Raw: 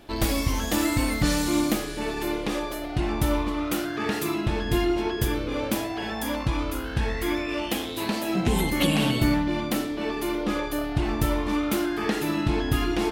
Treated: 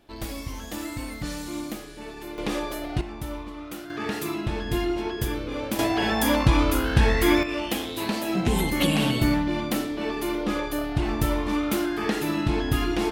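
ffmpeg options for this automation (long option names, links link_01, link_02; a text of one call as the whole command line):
ffmpeg -i in.wav -af "asetnsamples=nb_out_samples=441:pad=0,asendcmd='2.38 volume volume 0dB;3.01 volume volume -10dB;3.9 volume volume -2.5dB;5.79 volume volume 7dB;7.43 volume volume 0dB',volume=-9.5dB" out.wav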